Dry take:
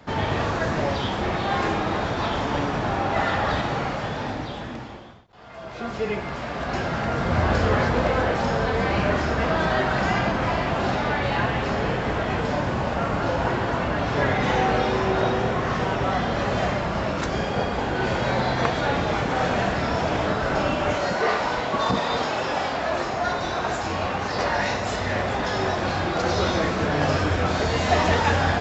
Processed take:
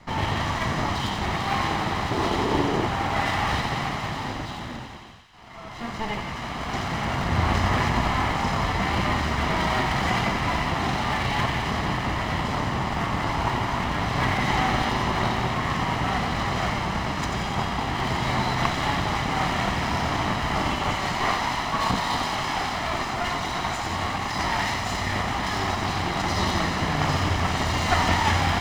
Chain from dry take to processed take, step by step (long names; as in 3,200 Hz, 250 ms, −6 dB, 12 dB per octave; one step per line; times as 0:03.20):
lower of the sound and its delayed copy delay 1 ms
0:02.11–0:02.86: parametric band 390 Hz +14 dB 0.75 octaves
delay with a high-pass on its return 89 ms, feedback 75%, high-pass 1,700 Hz, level −7.5 dB